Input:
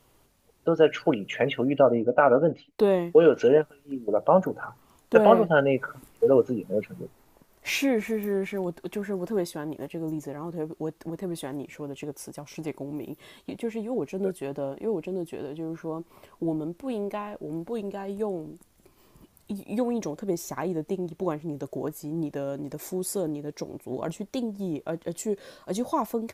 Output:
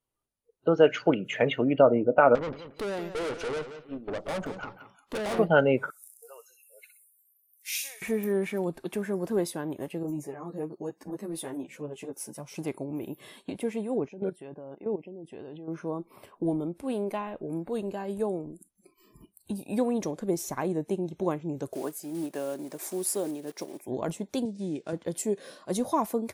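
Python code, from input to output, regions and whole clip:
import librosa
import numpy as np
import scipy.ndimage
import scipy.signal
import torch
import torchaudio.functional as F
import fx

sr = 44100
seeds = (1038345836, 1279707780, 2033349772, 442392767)

y = fx.chain(x, sr, fx.peak_eq(hz=3100.0, db=4.5, octaves=1.4),
    fx.tube_stage(drive_db=30.0, bias=0.7),
    fx.echo_feedback(ms=177, feedback_pct=25, wet_db=-11.0), at=(2.35, 5.39))
y = fx.chain(y, sr, fx.highpass(hz=740.0, slope=12),
    fx.differentiator(),
    fx.echo_wet_highpass(ms=62, feedback_pct=33, hz=3100.0, wet_db=-4.5), at=(5.9, 8.02))
y = fx.chain(y, sr, fx.high_shelf(hz=6200.0, db=2.5),
    fx.ensemble(), at=(10.03, 12.54))
y = fx.chain(y, sr, fx.level_steps(step_db=14),
    fx.air_absorb(metres=53.0), at=(14.08, 15.68))
y = fx.chain(y, sr, fx.block_float(bits=5),
    fx.highpass(hz=280.0, slope=12),
    fx.notch(hz=480.0, q=7.8), at=(21.73, 23.88))
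y = fx.chain(y, sr, fx.cvsd(bps=64000),
    fx.bandpass_edges(low_hz=150.0, high_hz=7600.0),
    fx.peak_eq(hz=840.0, db=-6.5, octaves=1.5), at=(24.45, 24.93))
y = fx.noise_reduce_blind(y, sr, reduce_db=26)
y = fx.peak_eq(y, sr, hz=9600.0, db=8.0, octaves=0.3)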